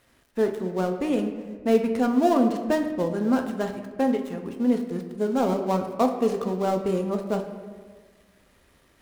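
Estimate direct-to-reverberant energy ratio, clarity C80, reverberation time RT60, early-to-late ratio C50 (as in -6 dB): 4.0 dB, 9.5 dB, 1.5 s, 8.0 dB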